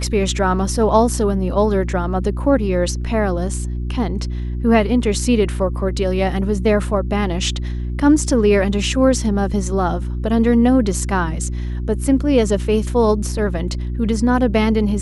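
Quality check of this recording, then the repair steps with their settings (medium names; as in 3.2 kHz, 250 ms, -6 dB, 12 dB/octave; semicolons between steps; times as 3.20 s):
hum 60 Hz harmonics 6 -23 dBFS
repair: de-hum 60 Hz, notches 6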